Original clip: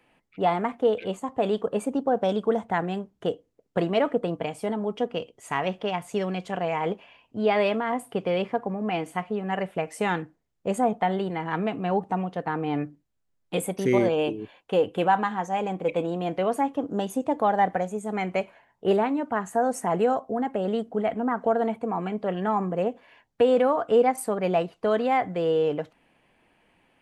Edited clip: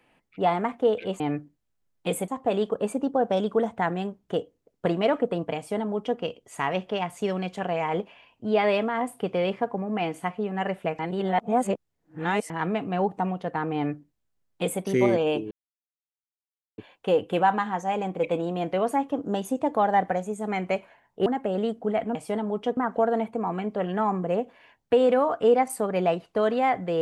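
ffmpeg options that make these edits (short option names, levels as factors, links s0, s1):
-filter_complex "[0:a]asplit=9[s0][s1][s2][s3][s4][s5][s6][s7][s8];[s0]atrim=end=1.202[s9];[s1]atrim=start=12.668:end=13.752[s10];[s2]atrim=start=1.198:end=9.912[s11];[s3]atrim=start=9.908:end=11.422,asetpts=PTS-STARTPTS,areverse[s12];[s4]atrim=start=11.418:end=14.43,asetpts=PTS-STARTPTS,afade=t=out:st=3.008:d=0.004:c=hsin,apad=pad_dur=1.27[s13];[s5]atrim=start=14.43:end=18.912,asetpts=PTS-STARTPTS,afade=t=in:d=0.004:c=hsin[s14];[s6]atrim=start=20.358:end=21.252[s15];[s7]atrim=start=4.488:end=5.112[s16];[s8]atrim=start=21.248[s17];[s9][s10]acrossfade=d=0.004:c1=hsin:c2=hsin[s18];[s18][s11]acrossfade=d=0.004:c1=hsin:c2=hsin[s19];[s19][s12]acrossfade=d=0.004:c1=hsin:c2=hsin[s20];[s13][s14]concat=n=2:v=0:a=1[s21];[s20][s21]acrossfade=d=0.004:c1=hsin:c2=hsin[s22];[s22][s15]acrossfade=d=0.004:c1=hsin:c2=hsin[s23];[s23][s16]acrossfade=d=0.004:c1=hsin:c2=hsin[s24];[s24][s17]acrossfade=d=0.004:c1=hsin:c2=hsin"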